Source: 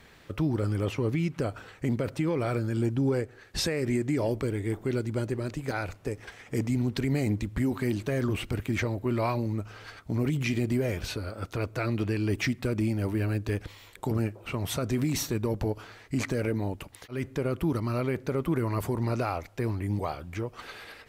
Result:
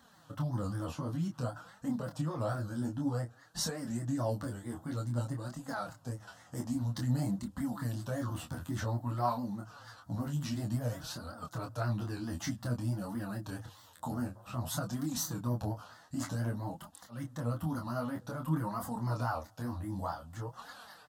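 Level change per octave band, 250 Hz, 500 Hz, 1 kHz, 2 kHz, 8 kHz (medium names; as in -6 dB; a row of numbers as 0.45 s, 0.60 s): -7.5 dB, -11.0 dB, -2.0 dB, -10.0 dB, -2.5 dB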